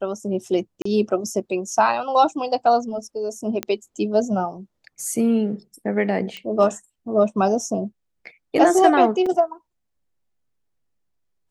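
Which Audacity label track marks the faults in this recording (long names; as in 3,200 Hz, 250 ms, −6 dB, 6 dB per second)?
0.820000	0.850000	drop-out 34 ms
3.630000	3.630000	click −9 dBFS
6.370000	6.370000	click −19 dBFS
9.260000	9.260000	drop-out 4.1 ms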